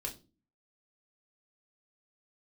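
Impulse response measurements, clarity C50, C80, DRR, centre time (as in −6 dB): 14.0 dB, 20.0 dB, −0.5 dB, 13 ms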